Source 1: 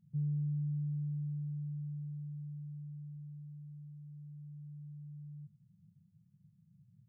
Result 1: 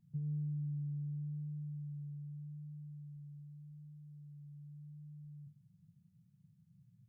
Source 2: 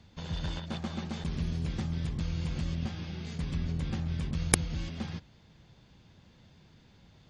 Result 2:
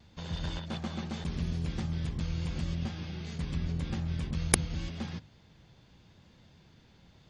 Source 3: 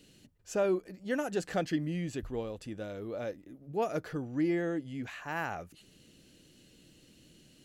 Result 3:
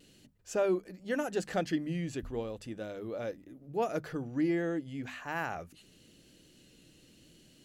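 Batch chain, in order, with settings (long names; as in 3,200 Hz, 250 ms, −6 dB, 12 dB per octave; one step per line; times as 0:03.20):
mains-hum notches 50/100/150/200/250 Hz
pitch vibrato 0.84 Hz 21 cents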